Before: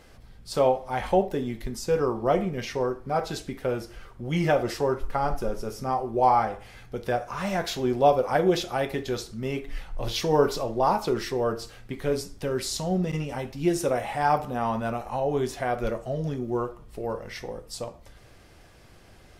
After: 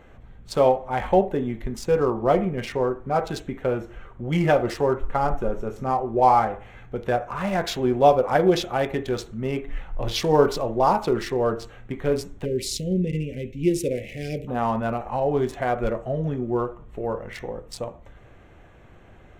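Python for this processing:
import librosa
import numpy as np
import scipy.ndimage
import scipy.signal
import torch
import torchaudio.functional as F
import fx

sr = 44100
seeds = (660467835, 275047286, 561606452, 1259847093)

y = fx.wiener(x, sr, points=9)
y = fx.ellip_bandstop(y, sr, low_hz=490.0, high_hz=2200.0, order=3, stop_db=60, at=(12.44, 14.47), fade=0.02)
y = F.gain(torch.from_numpy(y), 3.5).numpy()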